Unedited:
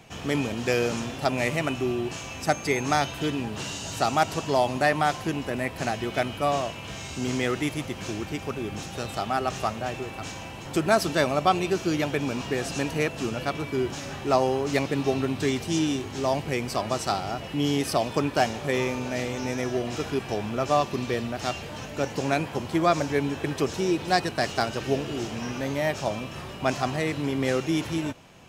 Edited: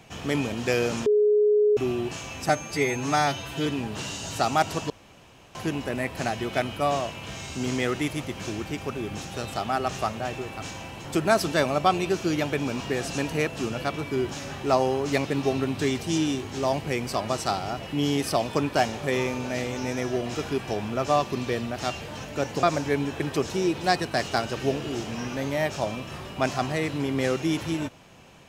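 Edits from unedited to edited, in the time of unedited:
1.06–1.77 s: bleep 419 Hz -16.5 dBFS
2.49–3.27 s: stretch 1.5×
4.51–5.16 s: room tone
22.24–22.87 s: delete

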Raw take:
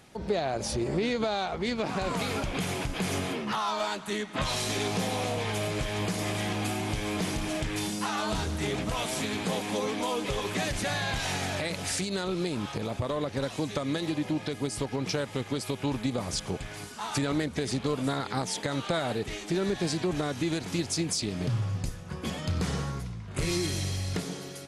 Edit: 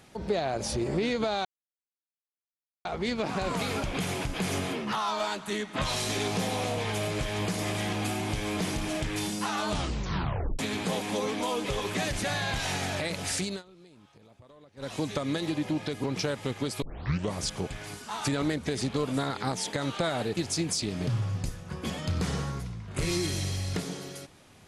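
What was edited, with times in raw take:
1.45 s: insert silence 1.40 s
8.29 s: tape stop 0.90 s
12.08–13.52 s: dip -23.5 dB, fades 0.15 s
14.64–14.94 s: delete
15.72 s: tape start 0.52 s
19.27–20.77 s: delete

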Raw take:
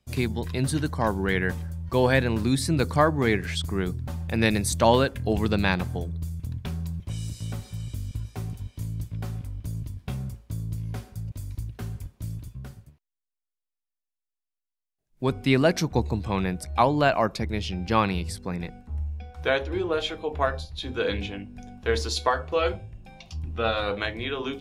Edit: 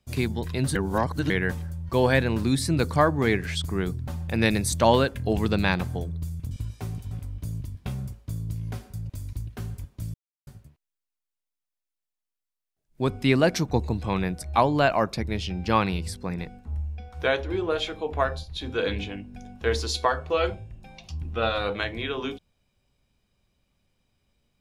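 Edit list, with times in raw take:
0.75–1.30 s: reverse
6.51–8.06 s: delete
8.66–9.33 s: delete
12.36–12.69 s: mute

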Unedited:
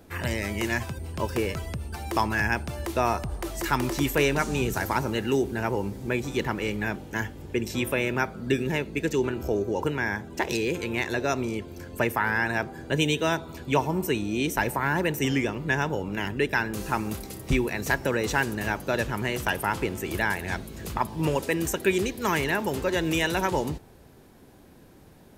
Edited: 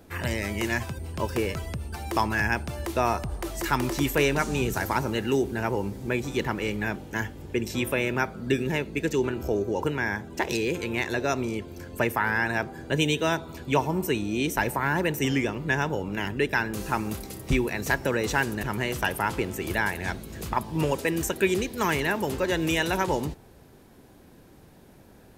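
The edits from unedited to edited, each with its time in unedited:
18.63–19.07 s: delete

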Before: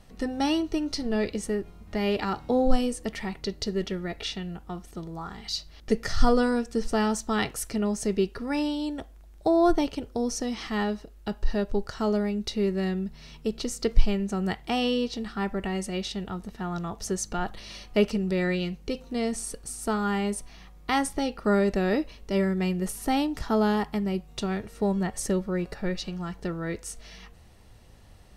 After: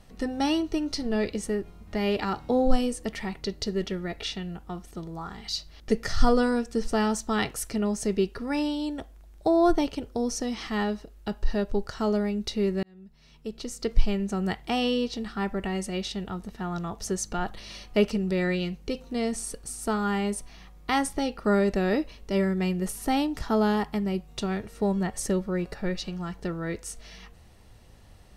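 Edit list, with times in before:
12.83–14.24 s: fade in

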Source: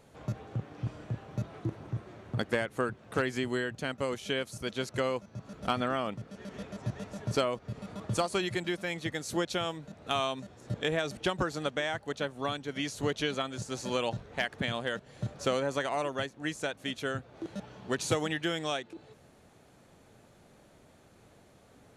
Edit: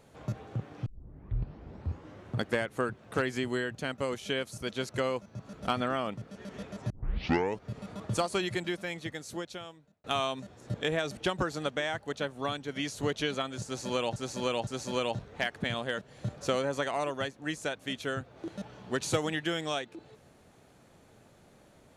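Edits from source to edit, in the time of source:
0.86 s: tape start 1.44 s
6.90 s: tape start 0.72 s
8.59–10.04 s: fade out
13.65–14.16 s: loop, 3 plays

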